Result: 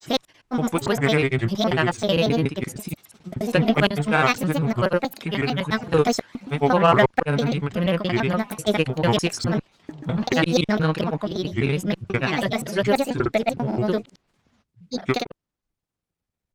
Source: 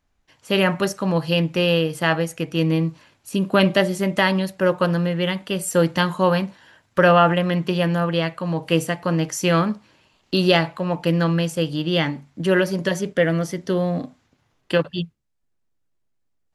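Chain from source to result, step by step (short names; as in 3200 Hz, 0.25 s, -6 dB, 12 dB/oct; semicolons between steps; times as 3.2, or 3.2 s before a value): slices in reverse order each 0.113 s, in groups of 5; grains, pitch spread up and down by 7 st; added harmonics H 8 -33 dB, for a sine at -4 dBFS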